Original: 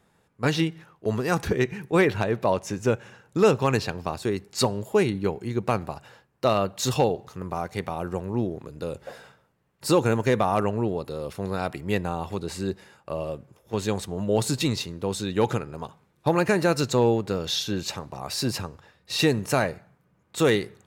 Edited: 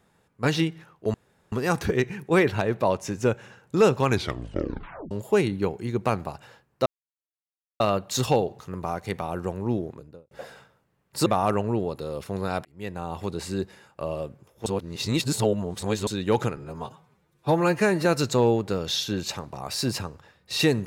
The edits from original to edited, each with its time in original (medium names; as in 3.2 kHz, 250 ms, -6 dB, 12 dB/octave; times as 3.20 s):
1.14 s: insert room tone 0.38 s
3.69 s: tape stop 1.04 s
6.48 s: insert silence 0.94 s
8.49–8.99 s: studio fade out
9.94–10.35 s: delete
11.74–12.34 s: fade in linear
13.75–15.16 s: reverse
15.66–16.65 s: stretch 1.5×